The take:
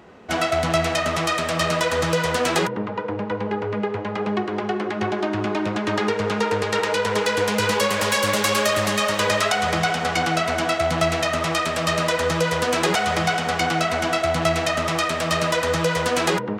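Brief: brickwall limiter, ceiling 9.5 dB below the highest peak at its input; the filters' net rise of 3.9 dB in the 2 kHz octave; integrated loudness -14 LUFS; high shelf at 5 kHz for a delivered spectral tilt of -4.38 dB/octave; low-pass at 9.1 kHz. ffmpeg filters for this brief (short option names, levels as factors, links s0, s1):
-af "lowpass=9100,equalizer=f=2000:t=o:g=5.5,highshelf=f=5000:g=-4,volume=3.16,alimiter=limit=0.531:level=0:latency=1"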